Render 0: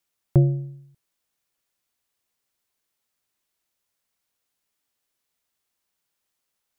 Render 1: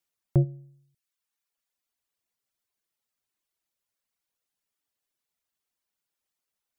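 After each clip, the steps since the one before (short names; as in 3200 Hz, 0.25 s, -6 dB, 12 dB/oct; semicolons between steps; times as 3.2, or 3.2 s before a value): reverb removal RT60 1 s; gain -4.5 dB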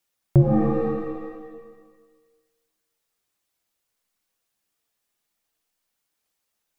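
shimmer reverb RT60 1.4 s, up +7 st, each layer -2 dB, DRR 3.5 dB; gain +5.5 dB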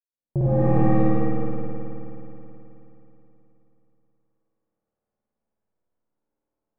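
opening faded in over 0.76 s; low-pass opened by the level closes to 610 Hz, open at -20 dBFS; spring tank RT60 3.4 s, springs 53 ms, chirp 75 ms, DRR -9.5 dB; gain -3.5 dB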